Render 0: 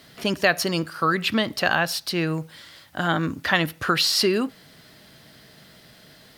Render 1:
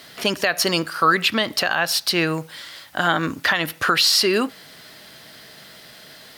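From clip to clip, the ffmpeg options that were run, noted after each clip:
-af "lowshelf=f=300:g=-11.5,alimiter=limit=0.188:level=0:latency=1:release=168,volume=2.51"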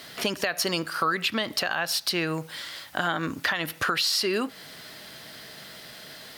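-af "acompressor=threshold=0.0501:ratio=2.5"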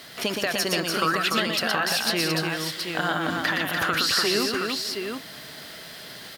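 -af "aecho=1:1:119|293|486|641|721:0.596|0.631|0.112|0.133|0.531"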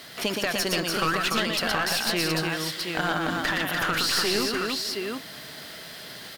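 -af "aeval=exprs='clip(val(0),-1,0.0531)':c=same"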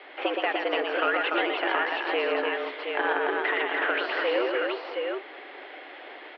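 -filter_complex "[0:a]asplit=2[s0][s1];[s1]acrusher=samples=24:mix=1:aa=0.000001,volume=0.355[s2];[s0][s2]amix=inputs=2:normalize=0,highpass=f=210:t=q:w=0.5412,highpass=f=210:t=q:w=1.307,lowpass=f=2800:t=q:w=0.5176,lowpass=f=2800:t=q:w=0.7071,lowpass=f=2800:t=q:w=1.932,afreqshift=120"

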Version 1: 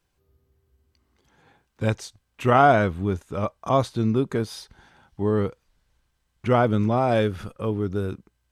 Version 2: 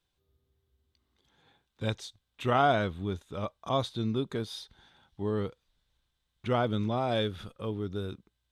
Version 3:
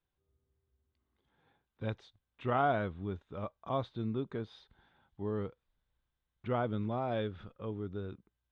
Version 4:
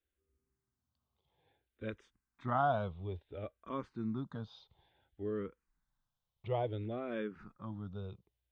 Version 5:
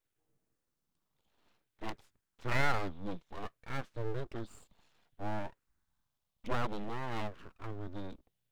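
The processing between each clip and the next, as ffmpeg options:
-af "equalizer=f=3600:t=o:w=0.41:g=12.5,volume=0.376"
-af "lowpass=2200,volume=0.562"
-filter_complex "[0:a]asplit=2[s0][s1];[s1]afreqshift=-0.58[s2];[s0][s2]amix=inputs=2:normalize=1"
-af "aeval=exprs='abs(val(0))':c=same,volume=1.58"

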